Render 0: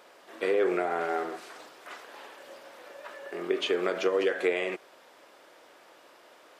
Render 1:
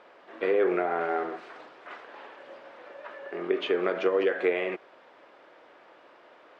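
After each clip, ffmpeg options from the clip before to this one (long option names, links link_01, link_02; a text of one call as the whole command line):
ffmpeg -i in.wav -af "lowpass=2600,volume=1.5dB" out.wav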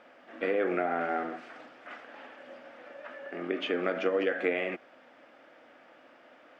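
ffmpeg -i in.wav -af "equalizer=frequency=250:width_type=o:width=0.33:gain=9,equalizer=frequency=400:width_type=o:width=0.33:gain=-10,equalizer=frequency=1000:width_type=o:width=0.33:gain=-9,equalizer=frequency=4000:width_type=o:width=0.33:gain=-6" out.wav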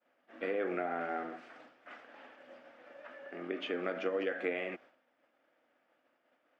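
ffmpeg -i in.wav -af "agate=range=-33dB:threshold=-47dB:ratio=3:detection=peak,volume=-6dB" out.wav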